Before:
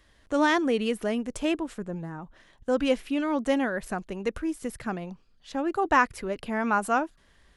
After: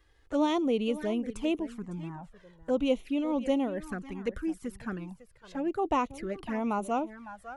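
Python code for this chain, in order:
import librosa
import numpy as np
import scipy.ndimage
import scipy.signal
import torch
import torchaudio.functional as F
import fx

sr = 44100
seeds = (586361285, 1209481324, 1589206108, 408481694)

p1 = fx.peak_eq(x, sr, hz=7900.0, db=-4.5, octaves=2.8)
p2 = p1 + fx.echo_single(p1, sr, ms=555, db=-15.0, dry=0)
p3 = fx.env_flanger(p2, sr, rest_ms=2.5, full_db=-23.5)
y = p3 * 10.0 ** (-1.5 / 20.0)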